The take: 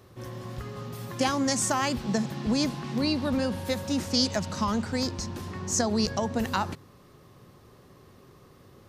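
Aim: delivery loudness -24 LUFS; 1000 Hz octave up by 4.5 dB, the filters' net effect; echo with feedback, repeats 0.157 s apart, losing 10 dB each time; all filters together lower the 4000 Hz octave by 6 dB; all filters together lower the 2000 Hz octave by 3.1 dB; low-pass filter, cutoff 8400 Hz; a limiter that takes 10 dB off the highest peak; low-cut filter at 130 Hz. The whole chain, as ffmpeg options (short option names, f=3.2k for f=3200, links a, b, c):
-af "highpass=130,lowpass=8.4k,equalizer=f=1k:t=o:g=7,equalizer=f=2k:t=o:g=-5.5,equalizer=f=4k:t=o:g=-6.5,alimiter=limit=-20dB:level=0:latency=1,aecho=1:1:157|314|471|628:0.316|0.101|0.0324|0.0104,volume=6.5dB"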